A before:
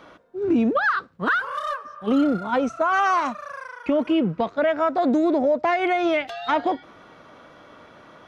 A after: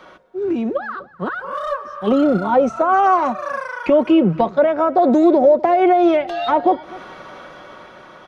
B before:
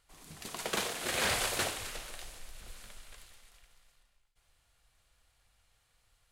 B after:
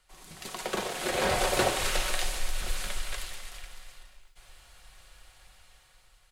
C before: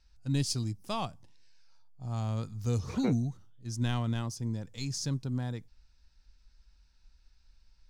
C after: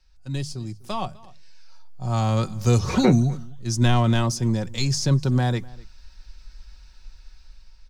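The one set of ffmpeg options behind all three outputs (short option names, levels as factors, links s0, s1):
-filter_complex "[0:a]equalizer=f=200:w=1.1:g=-5,acrossover=split=160|900[s0][s1][s2];[s2]acompressor=threshold=0.00891:ratio=5[s3];[s0][s1][s3]amix=inputs=3:normalize=0,highshelf=f=8300:g=-4,aecho=1:1:5.4:0.4,asplit=2[s4][s5];[s5]adelay=250.7,volume=0.0708,highshelf=f=4000:g=-5.64[s6];[s4][s6]amix=inputs=2:normalize=0,asplit=2[s7][s8];[s8]alimiter=limit=0.075:level=0:latency=1:release=339,volume=1.26[s9];[s7][s9]amix=inputs=2:normalize=0,bandreject=f=50:t=h:w=6,bandreject=f=100:t=h:w=6,bandreject=f=150:t=h:w=6,dynaudnorm=f=610:g=5:m=4.47,volume=0.708"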